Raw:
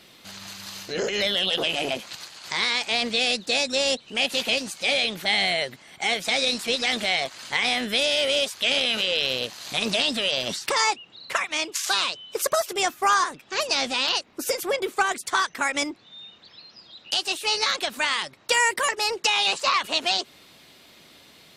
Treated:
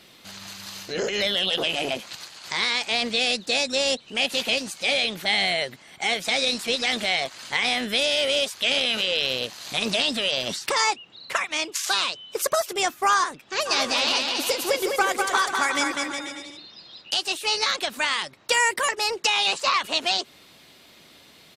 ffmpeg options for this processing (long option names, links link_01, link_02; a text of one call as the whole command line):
ffmpeg -i in.wav -filter_complex "[0:a]asplit=3[link_01][link_02][link_03];[link_01]afade=type=out:start_time=13.65:duration=0.02[link_04];[link_02]aecho=1:1:200|360|488|590.4|672.3|737.9:0.631|0.398|0.251|0.158|0.1|0.0631,afade=type=in:start_time=13.65:duration=0.02,afade=type=out:start_time=17.01:duration=0.02[link_05];[link_03]afade=type=in:start_time=17.01:duration=0.02[link_06];[link_04][link_05][link_06]amix=inputs=3:normalize=0" out.wav